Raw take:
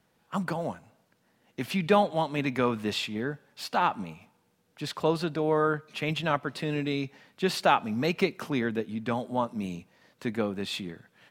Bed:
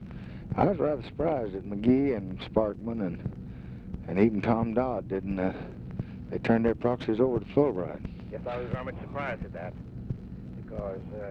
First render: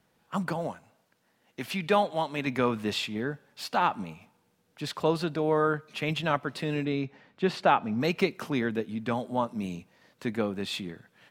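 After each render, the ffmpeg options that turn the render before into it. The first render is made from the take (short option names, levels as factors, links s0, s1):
-filter_complex "[0:a]asettb=1/sr,asplit=3[s0][s1][s2];[s0]atrim=end=0.674[s3];[s1]atrim=start=0.67:end=2.47,asetpts=PTS-STARTPTS,afade=t=in:d=0.004:c=qsin,afade=t=out:st=1.796:d=0.004:c=qsin,lowshelf=f=370:g=-6[s4];[s2]atrim=start=2.466[s5];[s3][s4]acrossfade=d=0.004:c1=hsin:c2=qsin[s6];[s6][s5]acrossfade=d=0.004:c1=qsin:c2=hsin,asettb=1/sr,asplit=3[s7][s8][s9];[s7]atrim=end=6.854[s10];[s8]atrim=start=6.85:end=8.01,asetpts=PTS-STARTPTS,afade=t=in:d=0.004:c=qsin,afade=t=out:st=1.156:d=0.004:c=qsin,aemphasis=mode=reproduction:type=75fm[s11];[s9]atrim=start=8.006[s12];[s10][s11]acrossfade=d=0.004:c1=hsin:c2=qsin[s13];[s13][s12]acrossfade=d=0.004:c1=qsin:c2=hsin"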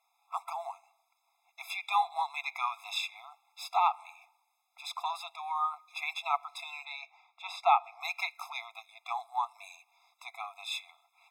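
-filter_complex "[0:a]acrossover=split=390[s0][s1];[s0]asoftclip=type=tanh:threshold=0.0447[s2];[s2][s1]amix=inputs=2:normalize=0,afftfilt=real='re*eq(mod(floor(b*sr/1024/680),2),1)':imag='im*eq(mod(floor(b*sr/1024/680),2),1)':win_size=1024:overlap=0.75"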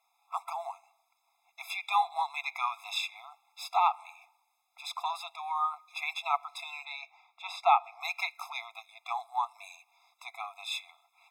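-af "volume=1.12"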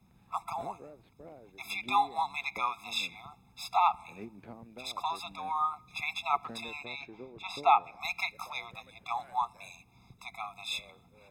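-filter_complex "[1:a]volume=0.075[s0];[0:a][s0]amix=inputs=2:normalize=0"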